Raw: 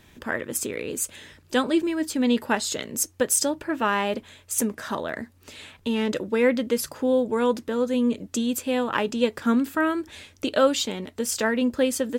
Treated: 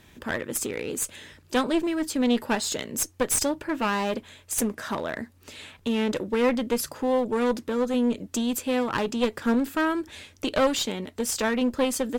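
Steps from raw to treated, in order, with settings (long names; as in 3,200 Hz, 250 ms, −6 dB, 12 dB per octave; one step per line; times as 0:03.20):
asymmetric clip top −25 dBFS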